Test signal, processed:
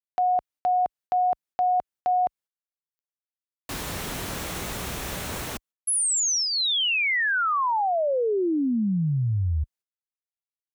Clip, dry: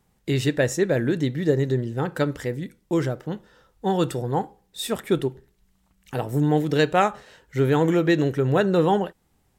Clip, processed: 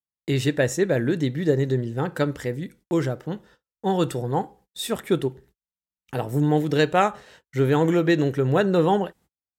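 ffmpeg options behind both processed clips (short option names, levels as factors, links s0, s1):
-af "adynamicequalizer=threshold=0.00251:dfrequency=4800:dqfactor=6.5:tfrequency=4800:tqfactor=6.5:attack=5:release=100:ratio=0.375:range=2.5:mode=cutabove:tftype=bell,agate=range=0.00891:threshold=0.00316:ratio=16:detection=peak,highpass=41"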